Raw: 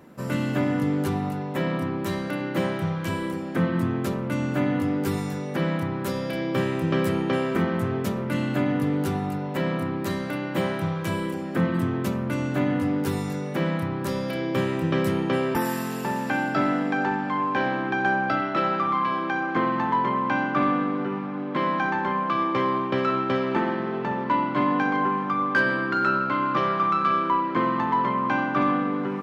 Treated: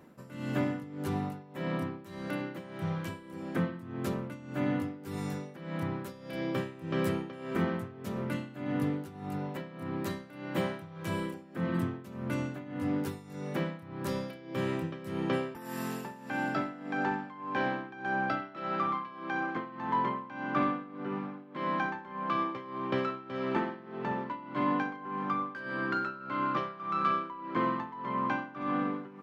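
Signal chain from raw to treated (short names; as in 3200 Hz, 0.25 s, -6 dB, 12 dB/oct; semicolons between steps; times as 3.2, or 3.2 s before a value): tremolo 1.7 Hz, depth 85%; gain -5.5 dB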